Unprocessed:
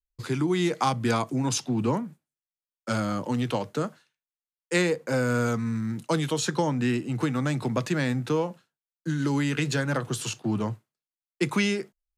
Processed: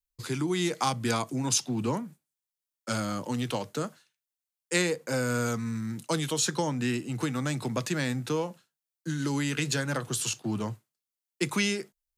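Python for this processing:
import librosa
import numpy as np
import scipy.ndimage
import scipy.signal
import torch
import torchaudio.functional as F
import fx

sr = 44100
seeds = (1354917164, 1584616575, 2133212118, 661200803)

y = fx.high_shelf(x, sr, hz=3800.0, db=10.0)
y = y * 10.0 ** (-4.0 / 20.0)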